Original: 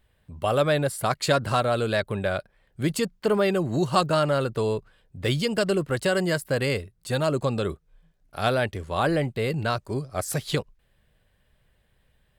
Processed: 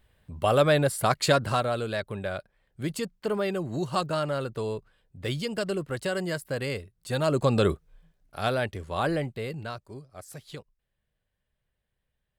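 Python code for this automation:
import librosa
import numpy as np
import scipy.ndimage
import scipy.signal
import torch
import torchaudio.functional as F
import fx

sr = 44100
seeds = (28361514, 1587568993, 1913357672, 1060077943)

y = fx.gain(x, sr, db=fx.line((1.23, 1.0), (1.88, -6.0), (6.94, -6.0), (7.65, 5.0), (8.4, -3.5), (9.11, -3.5), (10.11, -15.5)))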